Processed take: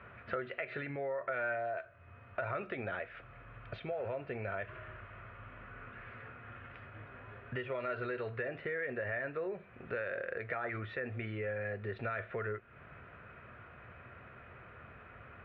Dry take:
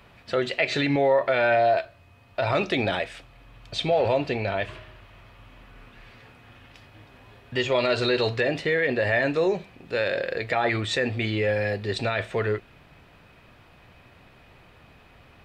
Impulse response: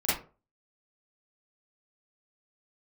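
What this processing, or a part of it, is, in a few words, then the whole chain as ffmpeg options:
bass amplifier: -af "acompressor=threshold=-38dB:ratio=4,highpass=66,equalizer=frequency=170:width_type=q:width=4:gain=-6,equalizer=frequency=290:width_type=q:width=4:gain=-8,equalizer=frequency=850:width_type=q:width=4:gain=-8,equalizer=frequency=1400:width_type=q:width=4:gain=8,lowpass=frequency=2200:width=0.5412,lowpass=frequency=2200:width=1.3066,volume=1dB"

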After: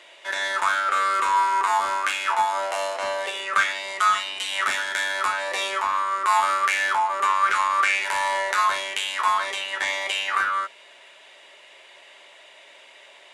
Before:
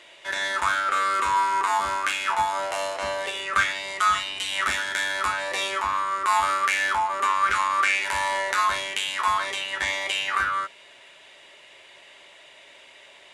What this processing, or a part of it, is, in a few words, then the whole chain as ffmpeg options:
filter by subtraction: -filter_complex "[0:a]asplit=2[link_01][link_02];[link_02]lowpass=620,volume=-1[link_03];[link_01][link_03]amix=inputs=2:normalize=0"

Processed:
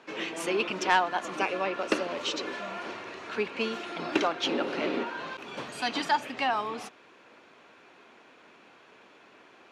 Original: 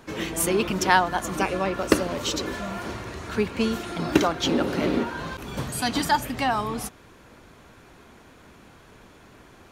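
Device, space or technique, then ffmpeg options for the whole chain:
intercom: -af "highpass=340,lowpass=4800,equalizer=frequency=2600:width_type=o:width=0.4:gain=5,asoftclip=type=tanh:threshold=-10dB,volume=-3dB"

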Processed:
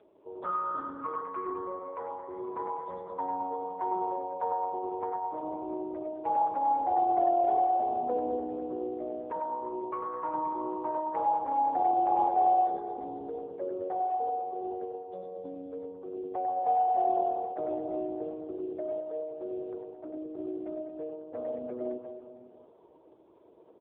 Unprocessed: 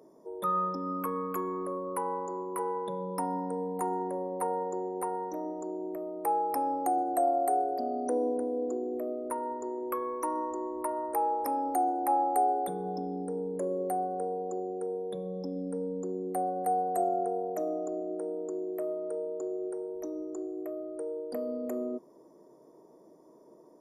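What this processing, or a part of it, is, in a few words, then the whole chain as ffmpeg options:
satellite phone: -filter_complex "[0:a]acrossover=split=3400[link_01][link_02];[link_02]acompressor=threshold=-56dB:ratio=4:attack=1:release=60[link_03];[link_01][link_03]amix=inputs=2:normalize=0,asettb=1/sr,asplit=3[link_04][link_05][link_06];[link_04]atrim=end=1.794[link_07];[link_05]atrim=start=1.79:end=2.42,asetpts=PTS-STARTPTS,afade=type=in:duration=0.004:curve=qsin,afade=type=out:start_time=0.626:duration=0.004:curve=qsin,equalizer=frequency=1000:width=2.1:gain=-6[link_08];[link_06]atrim=start=2.416[link_09];[link_07][link_08]acrossfade=duration=0.004:curve1=hsin:curve2=qsin[link_10];[link_10][link_09]acrossfade=duration=0.004:curve1=qsin:curve2=hsin,highpass=330,lowpass=3400,aecho=1:1:100|215|347.2|499.3|674.2:0.631|0.398|0.251|0.158|0.1,aecho=1:1:504:0.0631" -ar 8000 -c:a libopencore_amrnb -b:a 5150

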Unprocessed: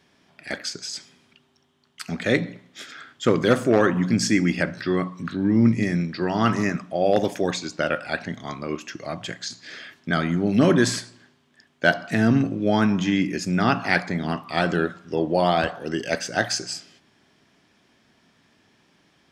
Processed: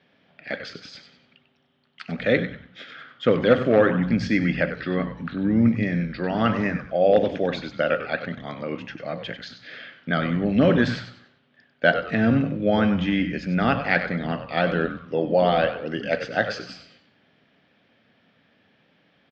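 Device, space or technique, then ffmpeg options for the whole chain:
frequency-shifting delay pedal into a guitar cabinet: -filter_complex "[0:a]asplit=5[link_01][link_02][link_03][link_04][link_05];[link_02]adelay=96,afreqshift=-120,volume=-10dB[link_06];[link_03]adelay=192,afreqshift=-240,volume=-19.9dB[link_07];[link_04]adelay=288,afreqshift=-360,volume=-29.8dB[link_08];[link_05]adelay=384,afreqshift=-480,volume=-39.7dB[link_09];[link_01][link_06][link_07][link_08][link_09]amix=inputs=5:normalize=0,highpass=110,equalizer=frequency=360:width_type=q:width=4:gain=-7,equalizer=frequency=520:width_type=q:width=4:gain=6,equalizer=frequency=1000:width_type=q:width=4:gain=-7,lowpass=frequency=3700:width=0.5412,lowpass=frequency=3700:width=1.3066"

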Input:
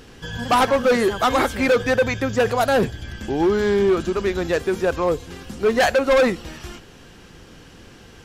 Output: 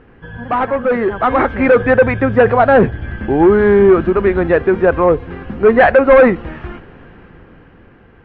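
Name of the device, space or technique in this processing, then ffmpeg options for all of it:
action camera in a waterproof case: -af "lowpass=frequency=2100:width=0.5412,lowpass=frequency=2100:width=1.3066,dynaudnorm=framelen=210:gausssize=13:maxgain=11.5dB" -ar 48000 -c:a aac -b:a 64k

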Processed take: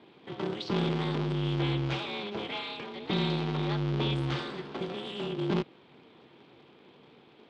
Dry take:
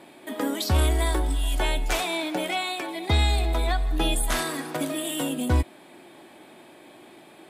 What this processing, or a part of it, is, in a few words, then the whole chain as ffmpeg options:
ring modulator pedal into a guitar cabinet: -af "aeval=exprs='val(0)*sgn(sin(2*PI*100*n/s))':channel_layout=same,highpass=110,equalizer=frequency=140:width_type=q:width=4:gain=7,equalizer=frequency=340:width_type=q:width=4:gain=9,equalizer=frequency=650:width_type=q:width=4:gain=-5,equalizer=frequency=1800:width_type=q:width=4:gain=-4,equalizer=frequency=3200:width_type=q:width=4:gain=4,lowpass=frequency=4500:width=0.5412,lowpass=frequency=4500:width=1.3066,volume=-8.5dB"

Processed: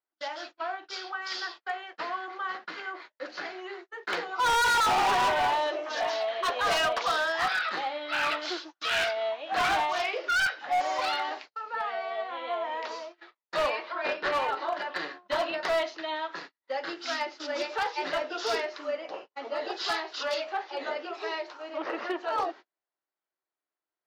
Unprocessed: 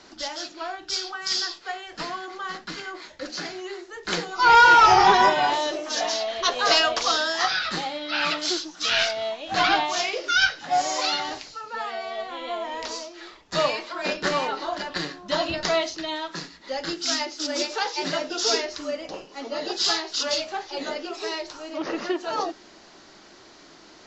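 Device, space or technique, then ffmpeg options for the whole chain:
walkie-talkie: -filter_complex "[0:a]highpass=500,lowpass=2500,asoftclip=type=hard:threshold=-22.5dB,agate=range=-42dB:threshold=-43dB:ratio=16:detection=peak,asplit=3[link_01][link_02][link_03];[link_01]afade=type=out:start_time=13.69:duration=0.02[link_04];[link_02]lowpass=frequency=5800:width=0.5412,lowpass=frequency=5800:width=1.3066,afade=type=in:start_time=13.69:duration=0.02,afade=type=out:start_time=14.31:duration=0.02[link_05];[link_03]afade=type=in:start_time=14.31:duration=0.02[link_06];[link_04][link_05][link_06]amix=inputs=3:normalize=0"

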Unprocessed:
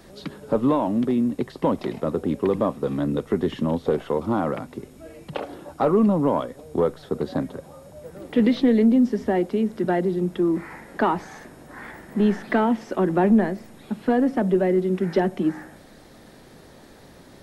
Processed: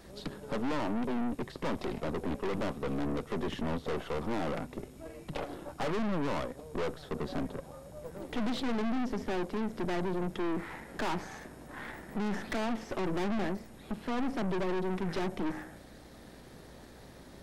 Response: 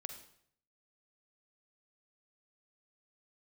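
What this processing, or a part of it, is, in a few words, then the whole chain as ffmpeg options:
valve amplifier with mains hum: -af "aeval=exprs='(tanh(35.5*val(0)+0.75)-tanh(0.75))/35.5':channel_layout=same,aeval=exprs='val(0)+0.00126*(sin(2*PI*60*n/s)+sin(2*PI*2*60*n/s)/2+sin(2*PI*3*60*n/s)/3+sin(2*PI*4*60*n/s)/4+sin(2*PI*5*60*n/s)/5)':channel_layout=same"

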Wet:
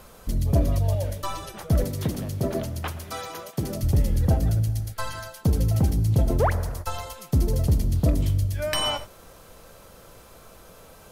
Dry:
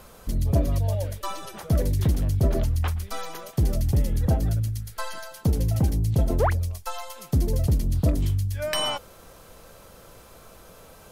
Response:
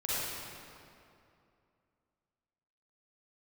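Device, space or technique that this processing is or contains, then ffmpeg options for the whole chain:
keyed gated reverb: -filter_complex "[0:a]asplit=3[link_01][link_02][link_03];[1:a]atrim=start_sample=2205[link_04];[link_02][link_04]afir=irnorm=-1:irlink=0[link_05];[link_03]apad=whole_len=490269[link_06];[link_05][link_06]sidechaingate=range=-33dB:threshold=-37dB:ratio=16:detection=peak,volume=-18.5dB[link_07];[link_01][link_07]amix=inputs=2:normalize=0,asettb=1/sr,asplit=3[link_08][link_09][link_10];[link_08]atrim=end=1.844[link_11];[link_09]atrim=start=1.84:end=3.83,asetpts=PTS-STARTPTS,afade=type=in:duration=0.004:curve=qsin,afade=type=out:start_time=1.986:duration=0.004:curve=qsin,highpass=150[link_12];[link_10]atrim=start=3.826[link_13];[link_11][link_12]acrossfade=duration=0.004:curve1=hsin:curve2=qsin[link_14];[link_14][link_13]acrossfade=duration=0.004:curve1=qsin:curve2=hsin"

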